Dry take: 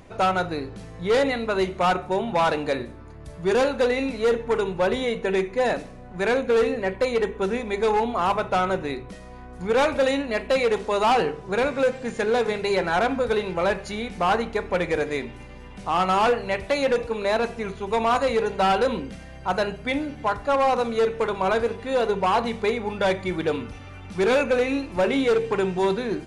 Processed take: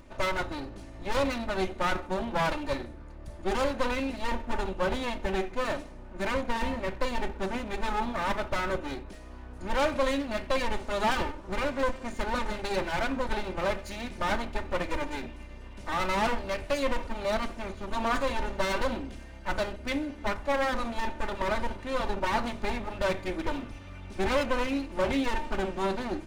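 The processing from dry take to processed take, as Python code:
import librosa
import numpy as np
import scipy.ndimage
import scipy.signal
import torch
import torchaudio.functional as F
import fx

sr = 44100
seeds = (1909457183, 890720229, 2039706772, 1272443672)

y = fx.lower_of_two(x, sr, delay_ms=3.3)
y = fx.low_shelf(y, sr, hz=100.0, db=8.0)
y = F.gain(torch.from_numpy(y), -5.0).numpy()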